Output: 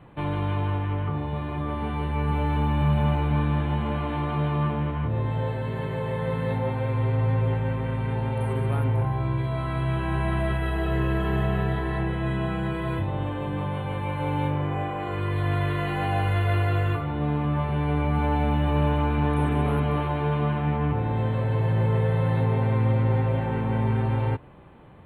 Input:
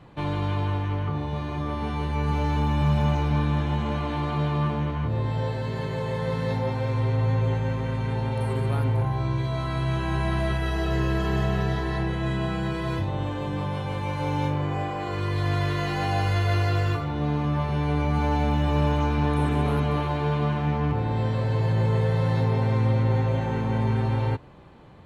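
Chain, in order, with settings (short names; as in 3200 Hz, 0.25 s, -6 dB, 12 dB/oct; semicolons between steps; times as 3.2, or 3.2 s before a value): Butterworth band-stop 5500 Hz, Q 0.98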